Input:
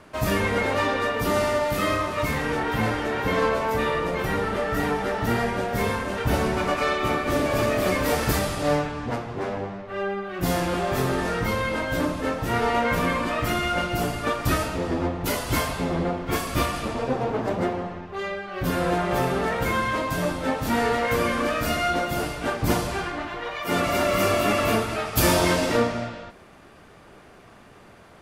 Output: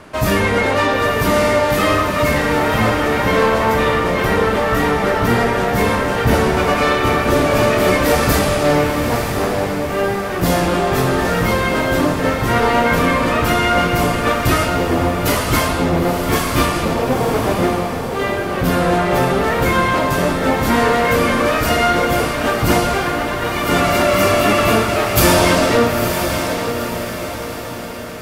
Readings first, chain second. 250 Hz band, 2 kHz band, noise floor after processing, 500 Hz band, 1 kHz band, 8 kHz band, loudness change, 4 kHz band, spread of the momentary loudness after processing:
+9.0 dB, +9.0 dB, −23 dBFS, +9.0 dB, +9.0 dB, +8.5 dB, +8.5 dB, +9.0 dB, 5 LU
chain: in parallel at −3.5 dB: soft clipping −22 dBFS, distortion −12 dB
on the sum: feedback delay with all-pass diffusion 936 ms, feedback 50%, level −6.5 dB
level +4.5 dB

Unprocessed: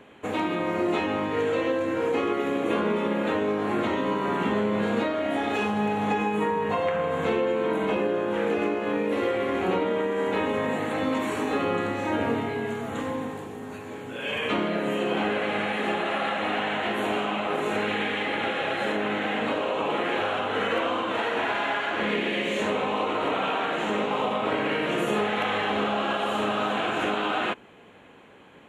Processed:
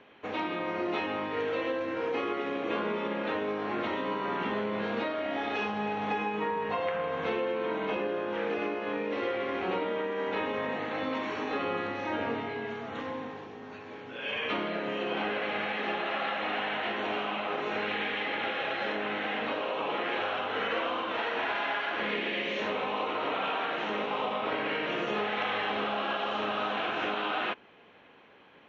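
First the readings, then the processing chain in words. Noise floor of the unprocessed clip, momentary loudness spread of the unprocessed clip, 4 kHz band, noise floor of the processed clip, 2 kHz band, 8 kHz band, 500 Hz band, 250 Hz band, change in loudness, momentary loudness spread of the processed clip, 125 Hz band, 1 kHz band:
−39 dBFS, 2 LU, −3.5 dB, −46 dBFS, −3.5 dB, below −10 dB, −6.0 dB, −8.5 dB, −5.5 dB, 2 LU, −10.0 dB, −4.5 dB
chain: elliptic low-pass filter 5,700 Hz, stop band 40 dB
low-shelf EQ 310 Hz −7.5 dB
level −3 dB

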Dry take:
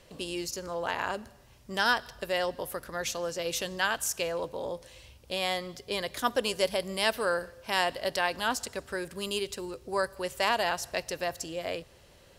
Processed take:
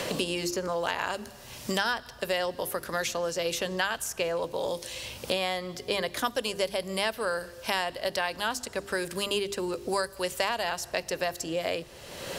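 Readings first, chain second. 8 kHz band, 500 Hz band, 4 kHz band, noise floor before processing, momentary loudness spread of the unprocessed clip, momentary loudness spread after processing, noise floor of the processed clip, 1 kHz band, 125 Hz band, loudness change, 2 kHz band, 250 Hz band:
+0.5 dB, +1.5 dB, +1.0 dB, −57 dBFS, 9 LU, 5 LU, −48 dBFS, −0.5 dB, +3.5 dB, +0.5 dB, 0.0 dB, +3.0 dB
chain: mains-hum notches 50/100/150/200/250/300/350/400 Hz
multiband upward and downward compressor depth 100%

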